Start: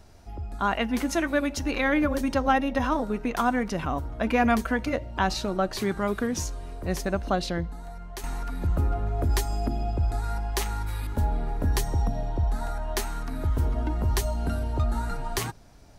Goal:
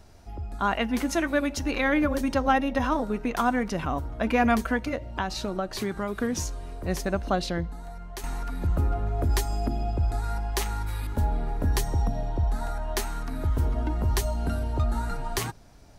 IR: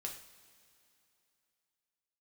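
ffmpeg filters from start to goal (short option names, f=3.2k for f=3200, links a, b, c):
-filter_complex "[0:a]asplit=3[a][b][c];[a]afade=t=out:st=4.78:d=0.02[d];[b]acompressor=threshold=-25dB:ratio=6,afade=t=in:st=4.78:d=0.02,afade=t=out:st=6.19:d=0.02[e];[c]afade=t=in:st=6.19:d=0.02[f];[d][e][f]amix=inputs=3:normalize=0"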